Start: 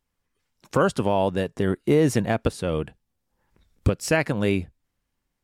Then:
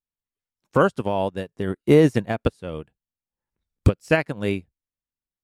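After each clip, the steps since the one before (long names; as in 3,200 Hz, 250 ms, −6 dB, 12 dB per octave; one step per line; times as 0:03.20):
expander for the loud parts 2.5 to 1, over −33 dBFS
level +6.5 dB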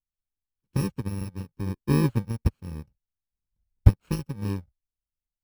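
samples in bit-reversed order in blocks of 64 samples
RIAA equalisation playback
level −10.5 dB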